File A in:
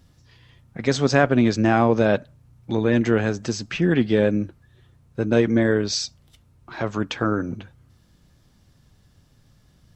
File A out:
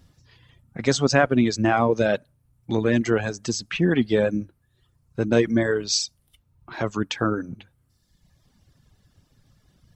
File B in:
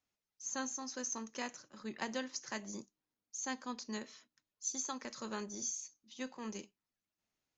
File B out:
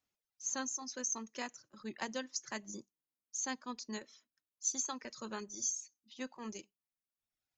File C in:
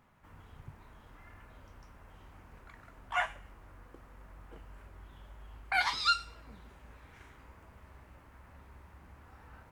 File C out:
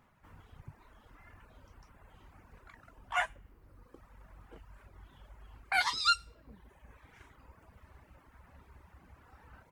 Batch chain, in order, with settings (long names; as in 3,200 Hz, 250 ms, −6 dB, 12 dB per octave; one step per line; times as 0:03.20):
reverb reduction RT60 1.2 s
dynamic equaliser 9,500 Hz, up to +7 dB, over −52 dBFS, Q 0.75